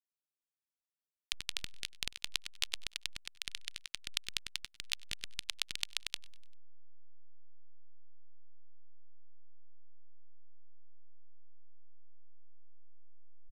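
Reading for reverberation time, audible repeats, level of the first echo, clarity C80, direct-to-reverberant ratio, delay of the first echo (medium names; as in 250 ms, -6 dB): no reverb, 3, -23.0 dB, no reverb, no reverb, 98 ms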